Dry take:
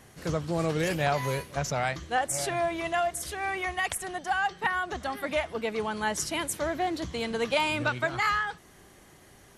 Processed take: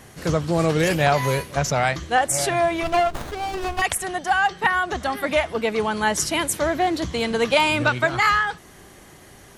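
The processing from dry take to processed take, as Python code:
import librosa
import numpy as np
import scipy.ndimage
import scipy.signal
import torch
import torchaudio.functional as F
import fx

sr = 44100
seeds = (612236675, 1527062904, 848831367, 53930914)

y = fx.running_max(x, sr, window=17, at=(2.83, 3.82))
y = F.gain(torch.from_numpy(y), 8.0).numpy()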